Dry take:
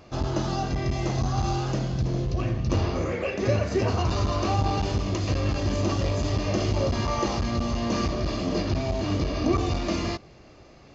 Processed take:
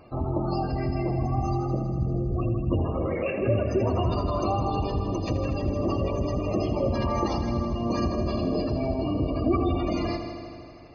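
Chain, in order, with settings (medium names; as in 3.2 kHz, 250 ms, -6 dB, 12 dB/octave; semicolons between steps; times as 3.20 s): hum notches 50/100/150/200 Hz; spectral gate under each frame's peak -20 dB strong; multi-head delay 80 ms, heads first and second, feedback 69%, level -12 dB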